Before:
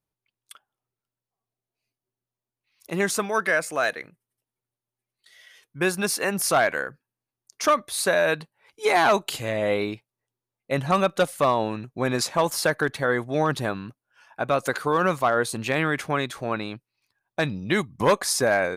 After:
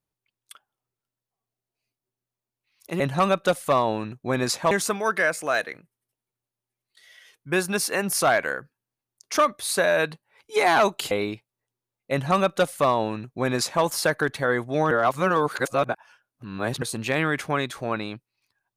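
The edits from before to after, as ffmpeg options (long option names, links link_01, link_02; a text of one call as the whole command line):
ffmpeg -i in.wav -filter_complex "[0:a]asplit=6[link_01][link_02][link_03][link_04][link_05][link_06];[link_01]atrim=end=3.002[link_07];[link_02]atrim=start=10.718:end=12.432[link_08];[link_03]atrim=start=2.998:end=9.402[link_09];[link_04]atrim=start=9.708:end=13.512[link_10];[link_05]atrim=start=13.508:end=15.422,asetpts=PTS-STARTPTS,areverse[link_11];[link_06]atrim=start=15.418[link_12];[link_07][link_08]acrossfade=duration=0.004:curve1=hsin:curve2=hsin[link_13];[link_13][link_09]acrossfade=duration=0.004:curve1=hsin:curve2=hsin[link_14];[link_14][link_10]acrossfade=duration=0.004:curve1=hsin:curve2=hsin[link_15];[link_15][link_11]acrossfade=duration=0.004:curve1=hsin:curve2=hsin[link_16];[link_16][link_12]acrossfade=duration=0.004:curve1=hsin:curve2=hsin" out.wav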